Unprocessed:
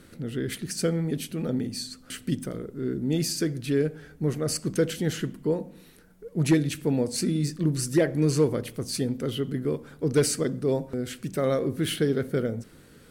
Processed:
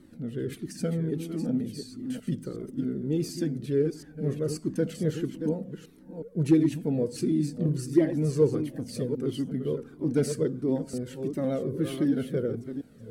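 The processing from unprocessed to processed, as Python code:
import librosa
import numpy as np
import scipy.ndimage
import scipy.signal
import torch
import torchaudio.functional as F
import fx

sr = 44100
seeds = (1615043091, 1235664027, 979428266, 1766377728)

y = fx.reverse_delay(x, sr, ms=366, wet_db=-8.0)
y = fx.peak_eq(y, sr, hz=270.0, db=13.5, octaves=2.3)
y = fx.comb_cascade(y, sr, direction='falling', hz=1.5)
y = y * 10.0 ** (-7.0 / 20.0)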